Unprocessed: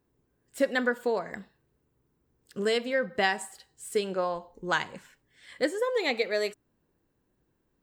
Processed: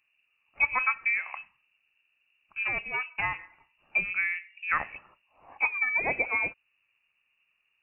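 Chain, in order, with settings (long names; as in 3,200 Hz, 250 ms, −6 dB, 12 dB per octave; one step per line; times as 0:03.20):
0:02.63–0:03.39: tube saturation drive 18 dB, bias 0.8
voice inversion scrambler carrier 2,800 Hz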